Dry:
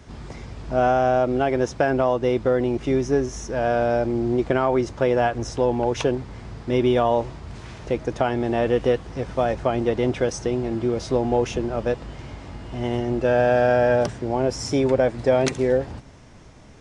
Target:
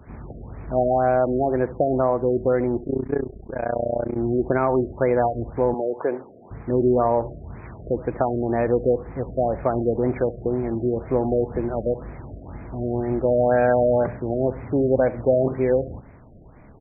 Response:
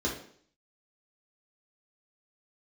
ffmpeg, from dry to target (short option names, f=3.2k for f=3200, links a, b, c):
-filter_complex "[0:a]asplit=3[a][b][c];[a]afade=t=out:st=2.79:d=0.02[d];[b]tremolo=f=30:d=0.947,afade=t=in:st=2.79:d=0.02,afade=t=out:st=4.16:d=0.02[e];[c]afade=t=in:st=4.16:d=0.02[f];[d][e][f]amix=inputs=3:normalize=0,asettb=1/sr,asplit=3[g][h][i];[g]atrim=end=5.744[j];[h]atrim=start=5.74:end=6.51,asetpts=PTS-STARTPTS,afade=t=in:d=0.004:c=qsin,afade=t=out:st=0.766:d=0.004:c=qsin,highpass=350[k];[i]atrim=start=6.506[l];[j][k]acrossfade=d=0.004:c1=hsin:c2=qsin[m];[m][l]acrossfade=d=0.004:c1=qsin:c2=hsin,asplit=2[n][o];[o]adelay=69,lowpass=f=950:p=1,volume=-16dB,asplit=2[p][q];[q]adelay=69,lowpass=f=950:p=1,volume=0.38,asplit=2[r][s];[s]adelay=69,lowpass=f=950:p=1,volume=0.38[t];[p][r][t]amix=inputs=3:normalize=0[u];[n][u]amix=inputs=2:normalize=0,afftfilt=real='re*lt(b*sr/1024,690*pow(2600/690,0.5+0.5*sin(2*PI*2*pts/sr)))':imag='im*lt(b*sr/1024,690*pow(2600/690,0.5+0.5*sin(2*PI*2*pts/sr)))':win_size=1024:overlap=0.75"